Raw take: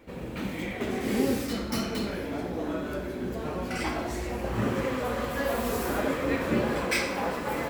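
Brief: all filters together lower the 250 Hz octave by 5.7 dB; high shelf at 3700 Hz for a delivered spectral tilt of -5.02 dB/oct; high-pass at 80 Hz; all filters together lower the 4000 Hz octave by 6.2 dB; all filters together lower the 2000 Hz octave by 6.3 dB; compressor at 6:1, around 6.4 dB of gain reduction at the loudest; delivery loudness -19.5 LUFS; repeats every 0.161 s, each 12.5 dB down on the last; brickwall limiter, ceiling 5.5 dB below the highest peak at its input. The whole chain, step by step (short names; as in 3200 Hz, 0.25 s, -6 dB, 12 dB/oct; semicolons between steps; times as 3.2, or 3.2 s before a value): HPF 80 Hz; bell 250 Hz -7 dB; bell 2000 Hz -6 dB; high shelf 3700 Hz -4 dB; bell 4000 Hz -3.5 dB; compressor 6:1, threshold -32 dBFS; limiter -28.5 dBFS; feedback echo 0.161 s, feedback 24%, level -12.5 dB; gain +18.5 dB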